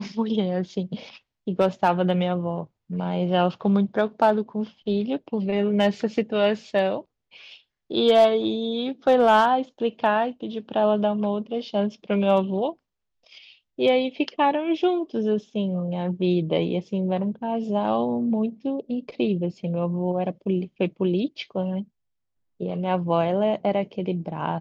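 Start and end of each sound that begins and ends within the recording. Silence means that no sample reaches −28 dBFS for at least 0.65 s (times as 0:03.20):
0:07.91–0:12.70
0:13.79–0:21.82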